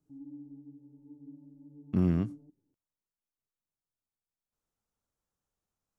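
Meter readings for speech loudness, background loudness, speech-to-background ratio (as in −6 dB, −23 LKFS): −30.5 LKFS, −50.5 LKFS, 20.0 dB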